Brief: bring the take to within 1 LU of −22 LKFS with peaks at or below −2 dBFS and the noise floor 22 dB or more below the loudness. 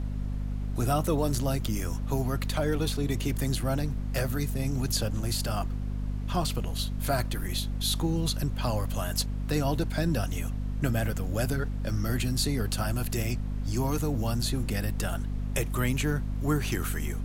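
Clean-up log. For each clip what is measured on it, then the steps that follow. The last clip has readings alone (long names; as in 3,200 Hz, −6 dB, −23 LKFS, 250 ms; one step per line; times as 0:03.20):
mains hum 50 Hz; hum harmonics up to 250 Hz; level of the hum −29 dBFS; background noise floor −33 dBFS; target noise floor −52 dBFS; integrated loudness −30.0 LKFS; sample peak −13.0 dBFS; target loudness −22.0 LKFS
→ mains-hum notches 50/100/150/200/250 Hz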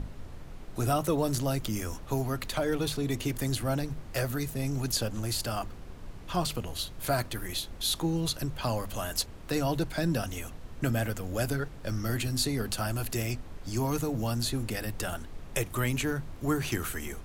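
mains hum none found; background noise floor −44 dBFS; target noise floor −54 dBFS
→ noise reduction from a noise print 10 dB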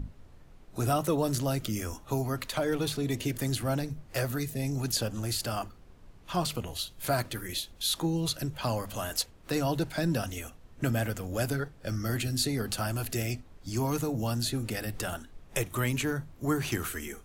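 background noise floor −54 dBFS; integrated loudness −31.5 LKFS; sample peak −16.0 dBFS; target loudness −22.0 LKFS
→ level +9.5 dB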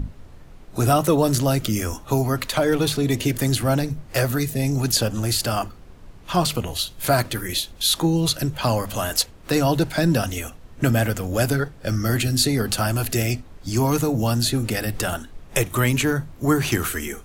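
integrated loudness −22.0 LKFS; sample peak −6.5 dBFS; background noise floor −44 dBFS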